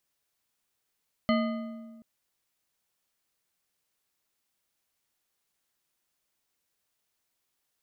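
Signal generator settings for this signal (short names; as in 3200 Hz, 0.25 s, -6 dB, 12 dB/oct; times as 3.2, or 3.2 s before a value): metal hit bar, length 0.73 s, lowest mode 228 Hz, modes 6, decay 1.63 s, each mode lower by 3.5 dB, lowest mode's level -22 dB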